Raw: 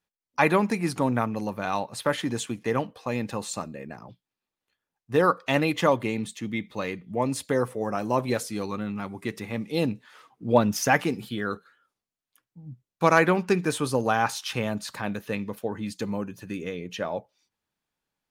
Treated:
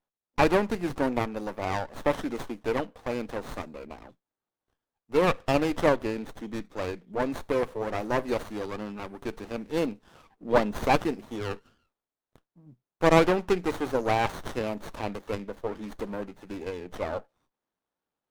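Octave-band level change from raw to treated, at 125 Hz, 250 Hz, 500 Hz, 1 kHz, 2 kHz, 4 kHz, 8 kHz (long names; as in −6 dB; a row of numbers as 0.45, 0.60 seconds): −4.0, −3.0, −0.5, −2.5, −4.5, −4.0, −10.5 decibels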